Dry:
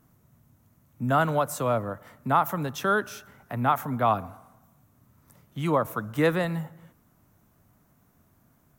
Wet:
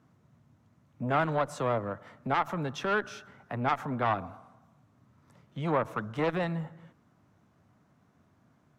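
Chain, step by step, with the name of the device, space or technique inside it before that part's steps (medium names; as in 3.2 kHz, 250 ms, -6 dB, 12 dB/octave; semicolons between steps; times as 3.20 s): valve radio (band-pass 93–4700 Hz; valve stage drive 16 dB, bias 0.3; transformer saturation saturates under 710 Hz)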